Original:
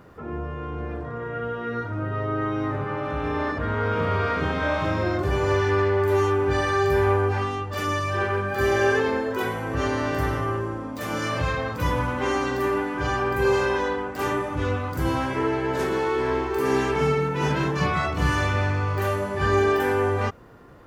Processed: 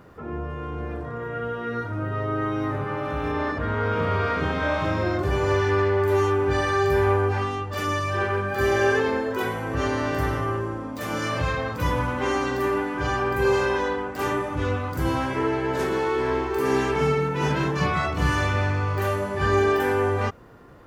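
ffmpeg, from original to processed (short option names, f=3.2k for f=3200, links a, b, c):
-filter_complex "[0:a]asettb=1/sr,asplit=3[a][b][c];[a]atrim=end=0.494[d];[b]atrim=start=0.49:end=3.32,asetpts=PTS-STARTPTS,afade=t=in:d=0.004:c=qsin,afade=t=out:st=2.826:d=0.004:c=qsin,highshelf=f=9.1k:g=10[e];[c]atrim=start=3.316[f];[d][e]acrossfade=d=0.004:c1=hsin:c2=qsin[g];[g][f]acrossfade=d=0.004:c1=qsin:c2=hsin"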